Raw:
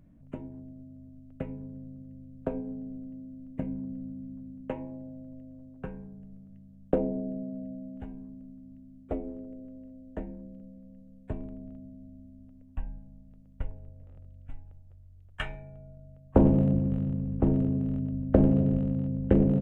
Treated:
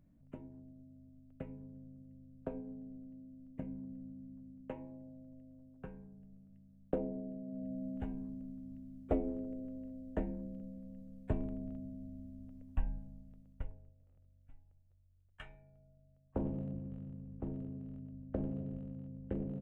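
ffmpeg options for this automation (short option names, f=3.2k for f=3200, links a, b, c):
-af "volume=0.5dB,afade=t=in:st=7.43:d=0.45:silence=0.316228,afade=t=out:st=12.92:d=0.71:silence=0.375837,afade=t=out:st=13.63:d=0.33:silence=0.354813"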